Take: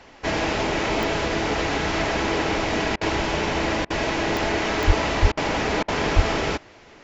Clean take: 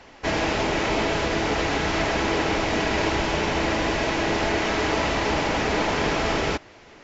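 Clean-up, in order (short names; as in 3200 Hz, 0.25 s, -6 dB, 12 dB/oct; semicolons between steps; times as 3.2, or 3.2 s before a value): de-click; 4.86–4.98 HPF 140 Hz 24 dB/oct; 5.21–5.33 HPF 140 Hz 24 dB/oct; 6.15–6.27 HPF 140 Hz 24 dB/oct; interpolate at 2.96/3.85/5.32/5.83, 51 ms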